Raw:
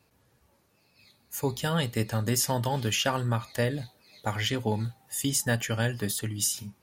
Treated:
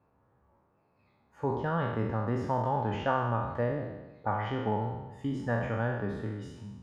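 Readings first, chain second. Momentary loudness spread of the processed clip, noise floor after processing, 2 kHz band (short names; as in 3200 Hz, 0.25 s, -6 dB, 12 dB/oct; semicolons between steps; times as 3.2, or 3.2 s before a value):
8 LU, -70 dBFS, -5.0 dB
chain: spectral trails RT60 1.10 s; synth low-pass 1100 Hz, resonance Q 1.6; gain -5 dB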